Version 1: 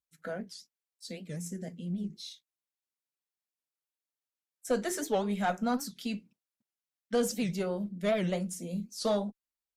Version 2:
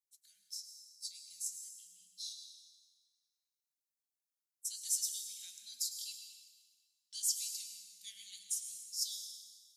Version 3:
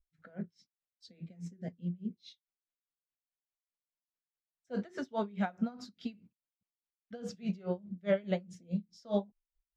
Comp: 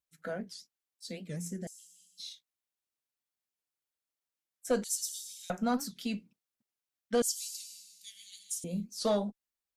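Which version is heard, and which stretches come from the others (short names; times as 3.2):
1
1.67–2.19 from 2
4.84–5.5 from 2
7.22–8.64 from 2
not used: 3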